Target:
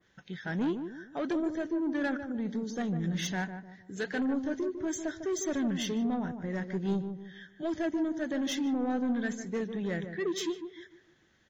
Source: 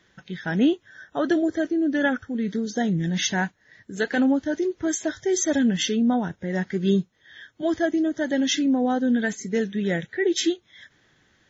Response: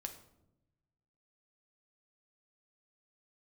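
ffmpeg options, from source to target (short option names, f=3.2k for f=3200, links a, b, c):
-filter_complex "[0:a]asoftclip=type=tanh:threshold=-19.5dB,asplit=2[a][b];[b]adelay=151,lowpass=f=1k:p=1,volume=-7.5dB,asplit=2[c][d];[d]adelay=151,lowpass=f=1k:p=1,volume=0.4,asplit=2[e][f];[f]adelay=151,lowpass=f=1k:p=1,volume=0.4,asplit=2[g][h];[h]adelay=151,lowpass=f=1k:p=1,volume=0.4,asplit=2[i][j];[j]adelay=151,lowpass=f=1k:p=1,volume=0.4[k];[c][e][g][i][k]amix=inputs=5:normalize=0[l];[a][l]amix=inputs=2:normalize=0,adynamicequalizer=threshold=0.00708:dfrequency=2000:dqfactor=0.7:tfrequency=2000:tqfactor=0.7:attack=5:release=100:ratio=0.375:range=1.5:mode=cutabove:tftype=highshelf,volume=-6.5dB"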